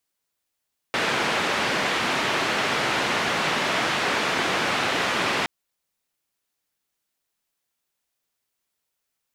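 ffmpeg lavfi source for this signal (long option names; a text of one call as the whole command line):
ffmpeg -f lavfi -i "anoisesrc=color=white:duration=4.52:sample_rate=44100:seed=1,highpass=frequency=150,lowpass=frequency=2400,volume=-9.7dB" out.wav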